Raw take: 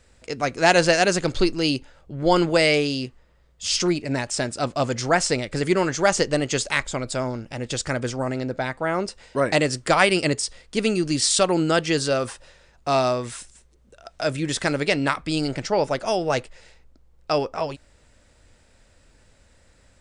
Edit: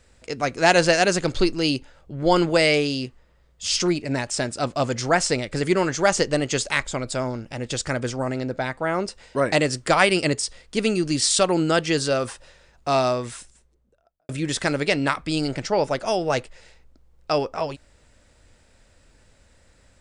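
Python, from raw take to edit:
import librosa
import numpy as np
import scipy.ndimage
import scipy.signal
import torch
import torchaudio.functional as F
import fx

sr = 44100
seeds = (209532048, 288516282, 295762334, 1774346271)

y = fx.studio_fade_out(x, sr, start_s=13.18, length_s=1.11)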